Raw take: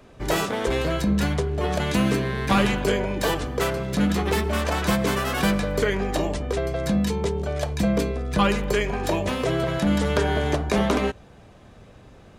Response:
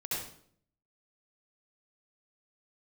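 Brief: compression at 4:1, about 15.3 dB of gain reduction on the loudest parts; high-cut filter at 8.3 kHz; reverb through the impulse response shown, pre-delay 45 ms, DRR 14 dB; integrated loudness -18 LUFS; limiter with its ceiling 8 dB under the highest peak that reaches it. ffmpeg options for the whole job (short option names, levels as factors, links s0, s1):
-filter_complex "[0:a]lowpass=8300,acompressor=threshold=0.0158:ratio=4,alimiter=level_in=1.88:limit=0.0631:level=0:latency=1,volume=0.531,asplit=2[s0][s1];[1:a]atrim=start_sample=2205,adelay=45[s2];[s1][s2]afir=irnorm=-1:irlink=0,volume=0.133[s3];[s0][s3]amix=inputs=2:normalize=0,volume=10.6"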